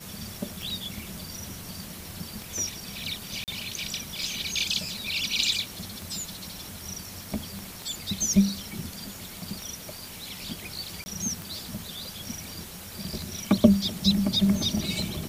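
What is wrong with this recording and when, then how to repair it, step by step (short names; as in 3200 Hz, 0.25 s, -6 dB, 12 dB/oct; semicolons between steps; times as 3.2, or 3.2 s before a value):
tick 33 1/3 rpm
3.44–3.48 gap 38 ms
7.59 pop
11.04–11.06 gap 20 ms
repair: de-click; interpolate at 3.44, 38 ms; interpolate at 11.04, 20 ms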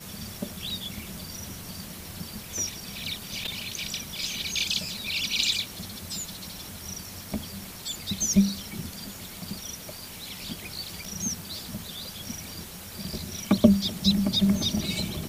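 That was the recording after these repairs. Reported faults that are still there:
none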